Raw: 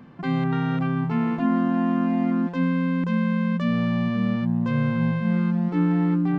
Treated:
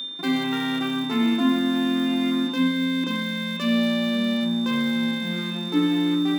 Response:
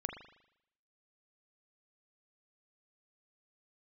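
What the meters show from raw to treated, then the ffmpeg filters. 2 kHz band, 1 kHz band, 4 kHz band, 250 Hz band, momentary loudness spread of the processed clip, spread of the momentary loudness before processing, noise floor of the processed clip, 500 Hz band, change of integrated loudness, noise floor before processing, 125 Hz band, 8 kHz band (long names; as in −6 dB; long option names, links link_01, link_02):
+4.0 dB, −2.0 dB, +17.5 dB, 0.0 dB, 4 LU, 2 LU, −30 dBFS, +0.5 dB, 0.0 dB, −30 dBFS, −11.0 dB, can't be measured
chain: -filter_complex "[0:a]aeval=exprs='sgn(val(0))*max(abs(val(0))-0.00316,0)':channel_layout=same,crystalizer=i=8:c=0,aeval=exprs='val(0)+0.0631*sin(2*PI*3600*n/s)':channel_layout=same,highpass=frequency=290:width_type=q:width=3.5[link_01];[1:a]atrim=start_sample=2205[link_02];[link_01][link_02]afir=irnorm=-1:irlink=0,volume=-3.5dB"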